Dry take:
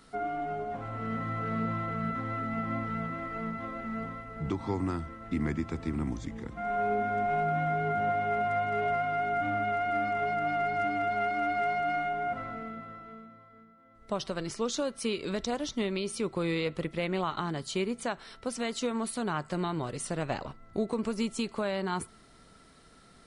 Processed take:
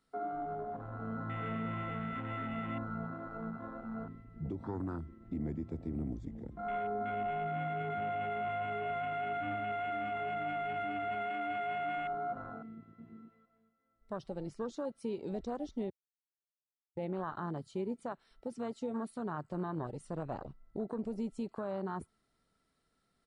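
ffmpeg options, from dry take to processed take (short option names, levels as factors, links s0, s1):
-filter_complex "[0:a]asplit=2[s0][s1];[s1]afade=t=in:st=12.74:d=0.01,afade=t=out:st=13.21:d=0.01,aecho=0:1:240|480|720|960|1200:0.944061|0.377624|0.15105|0.0604199|0.024168[s2];[s0][s2]amix=inputs=2:normalize=0,asplit=3[s3][s4][s5];[s3]atrim=end=15.9,asetpts=PTS-STARTPTS,afade=t=out:st=15.896:d=0.004:c=hsin[s6];[s4]atrim=start=15.9:end=16.97,asetpts=PTS-STARTPTS,volume=0[s7];[s5]atrim=start=16.97,asetpts=PTS-STARTPTS,afade=t=in:d=0.004:c=hsin[s8];[s6][s7][s8]concat=n=3:v=0:a=1,afwtdn=0.02,bandreject=f=6200:w=23,alimiter=level_in=1.06:limit=0.0631:level=0:latency=1:release=37,volume=0.944,volume=0.596"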